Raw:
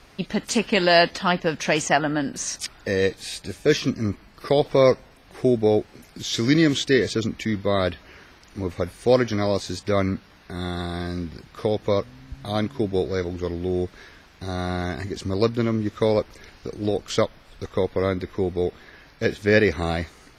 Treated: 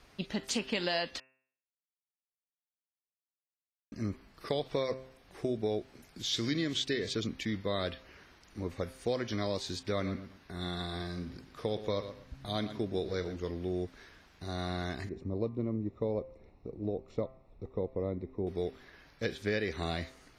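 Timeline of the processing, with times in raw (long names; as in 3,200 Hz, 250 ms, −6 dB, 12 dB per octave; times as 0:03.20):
0:01.20–0:03.92: silence
0:09.86–0:13.36: repeating echo 118 ms, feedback 25%, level −13 dB
0:15.09–0:18.47: moving average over 28 samples
whole clip: dynamic equaliser 3,600 Hz, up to +6 dB, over −44 dBFS, Q 1.6; downward compressor, threshold −19 dBFS; hum removal 131 Hz, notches 21; level −9 dB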